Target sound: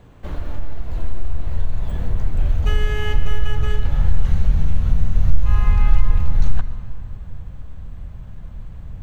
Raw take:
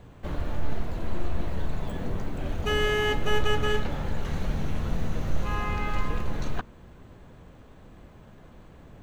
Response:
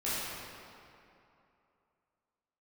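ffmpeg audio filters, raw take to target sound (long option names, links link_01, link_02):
-filter_complex "[0:a]acompressor=threshold=-25dB:ratio=6,asubboost=boost=9:cutoff=110,asplit=2[link_01][link_02];[1:a]atrim=start_sample=2205,adelay=78[link_03];[link_02][link_03]afir=irnorm=-1:irlink=0,volume=-18.5dB[link_04];[link_01][link_04]amix=inputs=2:normalize=0,volume=1.5dB"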